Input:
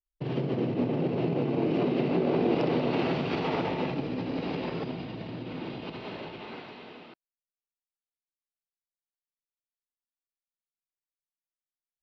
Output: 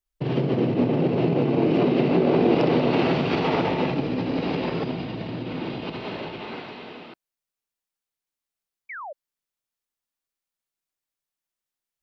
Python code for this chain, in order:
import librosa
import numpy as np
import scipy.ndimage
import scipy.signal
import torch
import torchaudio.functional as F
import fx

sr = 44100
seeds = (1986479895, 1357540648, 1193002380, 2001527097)

y = fx.spec_paint(x, sr, seeds[0], shape='fall', start_s=8.89, length_s=0.24, low_hz=530.0, high_hz=2400.0, level_db=-42.0)
y = y * librosa.db_to_amplitude(6.5)